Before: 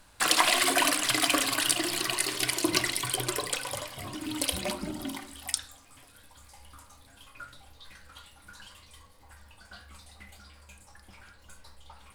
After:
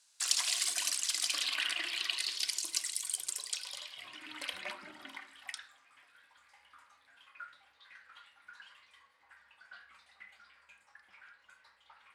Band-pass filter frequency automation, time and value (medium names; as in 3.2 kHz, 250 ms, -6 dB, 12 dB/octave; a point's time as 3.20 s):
band-pass filter, Q 1.8
1.25 s 6.3 kHz
1.69 s 2 kHz
2.75 s 7.5 kHz
3.33 s 7.5 kHz
4.33 s 1.8 kHz